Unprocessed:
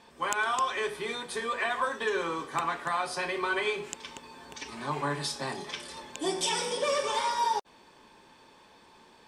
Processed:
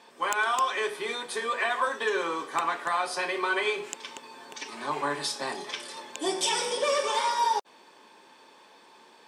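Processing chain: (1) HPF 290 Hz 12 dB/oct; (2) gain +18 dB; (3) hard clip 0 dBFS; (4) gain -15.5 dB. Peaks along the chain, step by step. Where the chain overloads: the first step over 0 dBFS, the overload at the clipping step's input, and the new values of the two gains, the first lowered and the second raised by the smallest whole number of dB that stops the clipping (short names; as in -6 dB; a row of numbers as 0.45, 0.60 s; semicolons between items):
-10.0, +8.0, 0.0, -15.5 dBFS; step 2, 8.0 dB; step 2 +10 dB, step 4 -7.5 dB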